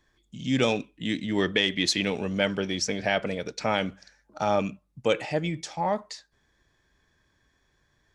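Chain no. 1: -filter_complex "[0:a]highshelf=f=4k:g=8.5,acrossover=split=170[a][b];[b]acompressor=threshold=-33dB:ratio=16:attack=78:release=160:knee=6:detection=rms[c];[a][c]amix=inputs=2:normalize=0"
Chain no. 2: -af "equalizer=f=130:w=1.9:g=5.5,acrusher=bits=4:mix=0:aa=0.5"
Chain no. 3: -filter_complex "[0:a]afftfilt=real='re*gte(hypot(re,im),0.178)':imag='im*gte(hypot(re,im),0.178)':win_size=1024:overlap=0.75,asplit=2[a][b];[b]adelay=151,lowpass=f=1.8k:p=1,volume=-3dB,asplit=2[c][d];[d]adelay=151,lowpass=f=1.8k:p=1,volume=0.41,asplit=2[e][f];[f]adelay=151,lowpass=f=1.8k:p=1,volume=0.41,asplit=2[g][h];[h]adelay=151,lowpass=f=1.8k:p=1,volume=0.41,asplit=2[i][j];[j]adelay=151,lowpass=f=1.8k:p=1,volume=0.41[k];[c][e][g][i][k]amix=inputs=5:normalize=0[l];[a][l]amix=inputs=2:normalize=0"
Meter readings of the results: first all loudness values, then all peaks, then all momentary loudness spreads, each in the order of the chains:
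-33.5, -26.5, -28.0 LUFS; -16.5, -9.0, -12.5 dBFS; 8, 7, 8 LU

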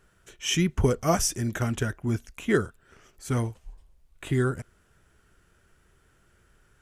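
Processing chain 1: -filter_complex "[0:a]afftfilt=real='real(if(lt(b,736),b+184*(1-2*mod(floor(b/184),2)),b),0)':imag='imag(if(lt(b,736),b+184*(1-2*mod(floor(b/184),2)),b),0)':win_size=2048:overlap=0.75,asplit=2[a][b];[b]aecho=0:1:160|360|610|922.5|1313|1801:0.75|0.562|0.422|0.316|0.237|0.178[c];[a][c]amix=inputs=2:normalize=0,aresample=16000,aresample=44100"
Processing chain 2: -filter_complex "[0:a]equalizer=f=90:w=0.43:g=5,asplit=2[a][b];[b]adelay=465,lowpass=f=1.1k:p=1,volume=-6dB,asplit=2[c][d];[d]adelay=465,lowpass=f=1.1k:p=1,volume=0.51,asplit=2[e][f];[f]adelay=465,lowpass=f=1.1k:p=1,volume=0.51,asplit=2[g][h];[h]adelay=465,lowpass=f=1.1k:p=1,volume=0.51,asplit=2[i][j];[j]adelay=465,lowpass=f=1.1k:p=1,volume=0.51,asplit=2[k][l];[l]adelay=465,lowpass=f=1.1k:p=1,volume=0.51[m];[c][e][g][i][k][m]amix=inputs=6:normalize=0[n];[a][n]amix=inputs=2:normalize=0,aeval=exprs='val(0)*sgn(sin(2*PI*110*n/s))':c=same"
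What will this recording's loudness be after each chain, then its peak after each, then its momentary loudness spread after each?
-21.5, -25.5 LUFS; -8.5, -8.0 dBFS; 17, 15 LU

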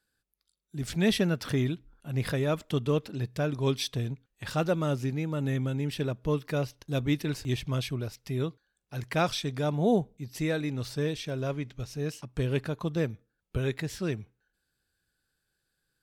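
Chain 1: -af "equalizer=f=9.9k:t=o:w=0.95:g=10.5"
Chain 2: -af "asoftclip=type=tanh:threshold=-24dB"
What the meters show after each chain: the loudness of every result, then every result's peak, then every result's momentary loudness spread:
-30.5, -33.5 LUFS; -12.5, -24.0 dBFS; 8, 7 LU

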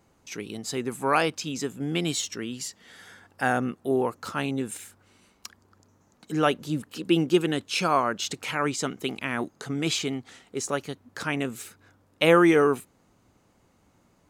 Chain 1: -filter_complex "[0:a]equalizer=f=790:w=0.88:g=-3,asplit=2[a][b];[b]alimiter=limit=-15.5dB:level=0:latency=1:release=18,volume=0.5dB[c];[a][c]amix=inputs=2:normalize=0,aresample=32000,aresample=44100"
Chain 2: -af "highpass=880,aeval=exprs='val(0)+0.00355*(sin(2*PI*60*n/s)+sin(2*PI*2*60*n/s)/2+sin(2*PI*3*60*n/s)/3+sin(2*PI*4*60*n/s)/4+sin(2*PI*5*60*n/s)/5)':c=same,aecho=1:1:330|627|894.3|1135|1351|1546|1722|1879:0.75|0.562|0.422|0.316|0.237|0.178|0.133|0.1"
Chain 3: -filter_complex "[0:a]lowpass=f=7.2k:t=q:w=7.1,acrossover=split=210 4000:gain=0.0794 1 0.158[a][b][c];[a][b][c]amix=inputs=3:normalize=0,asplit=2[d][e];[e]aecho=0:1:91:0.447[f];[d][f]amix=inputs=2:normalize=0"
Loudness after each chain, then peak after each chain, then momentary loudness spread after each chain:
-22.5, -28.5, -26.5 LUFS; -4.0, -7.5, -6.0 dBFS; 15, 11, 15 LU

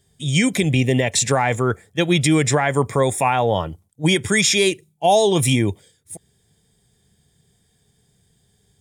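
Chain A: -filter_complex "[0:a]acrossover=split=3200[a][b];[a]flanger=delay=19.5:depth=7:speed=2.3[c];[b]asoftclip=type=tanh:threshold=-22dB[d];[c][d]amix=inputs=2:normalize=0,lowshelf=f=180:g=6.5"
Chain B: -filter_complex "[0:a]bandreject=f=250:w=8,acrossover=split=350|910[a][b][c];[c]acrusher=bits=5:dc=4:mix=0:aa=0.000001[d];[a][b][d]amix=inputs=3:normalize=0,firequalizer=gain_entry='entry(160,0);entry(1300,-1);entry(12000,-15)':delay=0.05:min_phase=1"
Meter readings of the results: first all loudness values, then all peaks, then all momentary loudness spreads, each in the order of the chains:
-20.0, -20.0 LUFS; -5.0, -5.5 dBFS; 7, 6 LU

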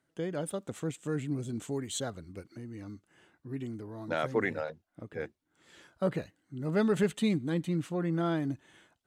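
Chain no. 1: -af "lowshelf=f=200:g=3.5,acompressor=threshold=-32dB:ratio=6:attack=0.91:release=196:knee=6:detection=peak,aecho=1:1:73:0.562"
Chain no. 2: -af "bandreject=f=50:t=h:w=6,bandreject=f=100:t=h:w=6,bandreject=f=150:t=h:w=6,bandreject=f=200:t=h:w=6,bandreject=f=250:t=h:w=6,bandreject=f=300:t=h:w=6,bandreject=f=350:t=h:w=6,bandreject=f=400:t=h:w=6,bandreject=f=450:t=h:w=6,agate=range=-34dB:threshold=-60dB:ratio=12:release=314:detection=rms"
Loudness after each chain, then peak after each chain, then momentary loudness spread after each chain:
-39.0, -34.0 LUFS; -25.5, -17.0 dBFS; 11, 16 LU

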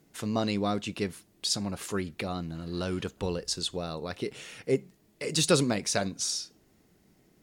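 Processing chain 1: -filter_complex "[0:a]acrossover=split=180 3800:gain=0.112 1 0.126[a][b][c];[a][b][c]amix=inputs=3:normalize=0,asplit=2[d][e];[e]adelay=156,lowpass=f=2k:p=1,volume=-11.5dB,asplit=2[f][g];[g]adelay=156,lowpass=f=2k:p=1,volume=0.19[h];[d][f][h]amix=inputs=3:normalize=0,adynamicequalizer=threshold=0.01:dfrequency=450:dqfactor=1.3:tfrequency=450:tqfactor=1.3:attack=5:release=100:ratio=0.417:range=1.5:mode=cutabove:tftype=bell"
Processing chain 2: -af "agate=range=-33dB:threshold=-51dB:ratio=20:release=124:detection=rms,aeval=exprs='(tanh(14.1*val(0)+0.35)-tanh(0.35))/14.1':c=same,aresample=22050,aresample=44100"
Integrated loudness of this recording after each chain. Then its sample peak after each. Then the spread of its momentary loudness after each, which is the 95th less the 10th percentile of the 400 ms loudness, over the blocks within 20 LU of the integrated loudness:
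-34.0, -34.0 LUFS; -12.5, -19.5 dBFS; 11, 9 LU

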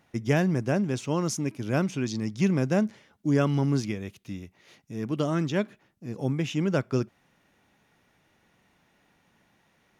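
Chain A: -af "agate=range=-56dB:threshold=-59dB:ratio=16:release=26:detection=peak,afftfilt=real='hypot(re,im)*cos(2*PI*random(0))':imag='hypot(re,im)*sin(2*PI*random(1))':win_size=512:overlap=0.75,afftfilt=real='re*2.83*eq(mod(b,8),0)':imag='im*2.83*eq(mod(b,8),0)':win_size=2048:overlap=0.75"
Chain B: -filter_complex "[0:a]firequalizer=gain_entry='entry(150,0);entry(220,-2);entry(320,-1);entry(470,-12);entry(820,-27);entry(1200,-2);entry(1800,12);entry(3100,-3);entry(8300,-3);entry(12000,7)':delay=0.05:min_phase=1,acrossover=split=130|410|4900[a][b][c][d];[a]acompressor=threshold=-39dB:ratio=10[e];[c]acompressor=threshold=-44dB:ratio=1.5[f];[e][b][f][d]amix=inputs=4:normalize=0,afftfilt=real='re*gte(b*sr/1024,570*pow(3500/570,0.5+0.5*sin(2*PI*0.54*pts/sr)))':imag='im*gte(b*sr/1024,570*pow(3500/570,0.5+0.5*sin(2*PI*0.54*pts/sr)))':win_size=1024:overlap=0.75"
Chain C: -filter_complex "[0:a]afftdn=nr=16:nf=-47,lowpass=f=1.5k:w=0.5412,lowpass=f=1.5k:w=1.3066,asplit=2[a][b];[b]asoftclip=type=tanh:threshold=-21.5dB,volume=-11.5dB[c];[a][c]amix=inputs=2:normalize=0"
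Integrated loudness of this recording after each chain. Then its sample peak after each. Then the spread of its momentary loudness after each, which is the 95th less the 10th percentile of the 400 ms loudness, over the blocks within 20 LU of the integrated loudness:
-35.5, -41.5, -26.5 LUFS; -19.0, -22.5, -10.5 dBFS; 14, 23, 13 LU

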